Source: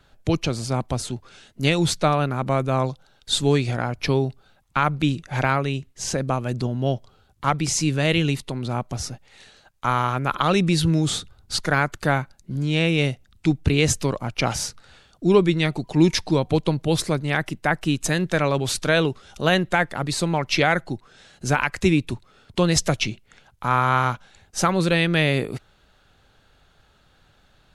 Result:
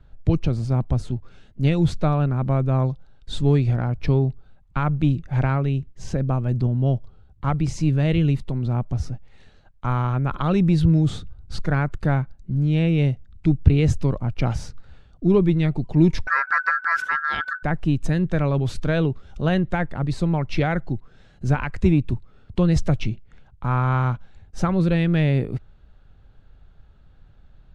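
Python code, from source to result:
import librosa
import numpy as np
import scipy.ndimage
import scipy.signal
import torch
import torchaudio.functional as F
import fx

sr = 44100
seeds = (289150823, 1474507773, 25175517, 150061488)

p1 = fx.riaa(x, sr, side='playback')
p2 = fx.ring_mod(p1, sr, carrier_hz=1500.0, at=(16.27, 17.63))
p3 = 10.0 ** (-9.5 / 20.0) * np.tanh(p2 / 10.0 ** (-9.5 / 20.0))
p4 = p2 + (p3 * 10.0 ** (-12.0 / 20.0))
y = p4 * 10.0 ** (-7.5 / 20.0)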